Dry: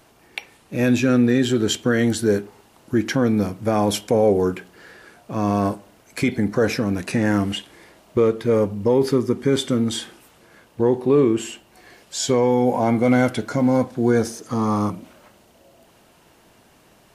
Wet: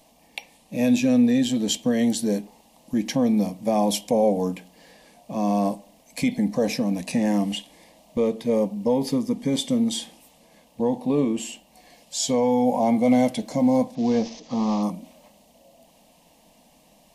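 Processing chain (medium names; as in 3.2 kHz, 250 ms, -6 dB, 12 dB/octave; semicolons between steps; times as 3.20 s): 13.95–14.83 s: CVSD coder 32 kbps; static phaser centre 380 Hz, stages 6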